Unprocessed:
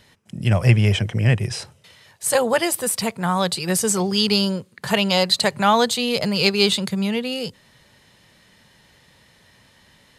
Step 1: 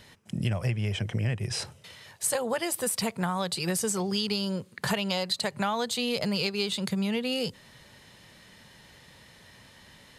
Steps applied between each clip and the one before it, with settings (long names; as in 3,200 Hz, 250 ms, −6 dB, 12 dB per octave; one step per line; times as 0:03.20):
downward compressor 12 to 1, threshold −26 dBFS, peak gain reduction 17.5 dB
level +1 dB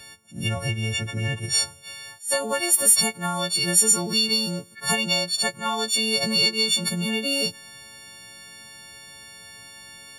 every partial snapped to a pitch grid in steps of 4 semitones
level that may rise only so fast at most 210 dB per second
level +1.5 dB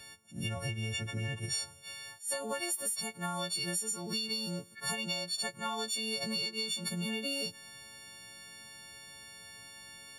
downward compressor 12 to 1, threshold −25 dBFS, peak gain reduction 14 dB
level −6.5 dB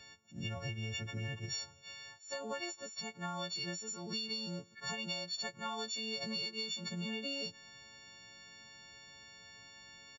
downsampling to 16,000 Hz
level −4 dB